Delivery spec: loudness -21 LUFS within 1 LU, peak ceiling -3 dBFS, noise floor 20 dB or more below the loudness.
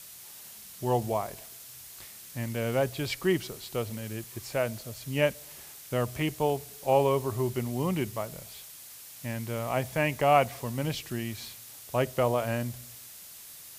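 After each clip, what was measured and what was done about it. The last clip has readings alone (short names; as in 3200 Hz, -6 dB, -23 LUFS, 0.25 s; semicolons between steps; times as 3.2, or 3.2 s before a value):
noise floor -47 dBFS; noise floor target -50 dBFS; loudness -30.0 LUFS; peak -8.5 dBFS; loudness target -21.0 LUFS
-> denoiser 6 dB, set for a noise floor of -47 dBFS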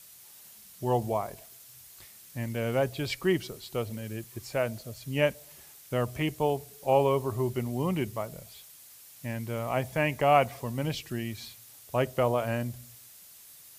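noise floor -52 dBFS; loudness -30.0 LUFS; peak -8.5 dBFS; loudness target -21.0 LUFS
-> gain +9 dB; limiter -3 dBFS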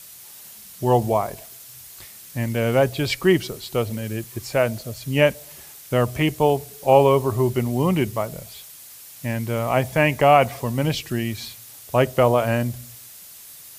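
loudness -21.5 LUFS; peak -3.0 dBFS; noise floor -43 dBFS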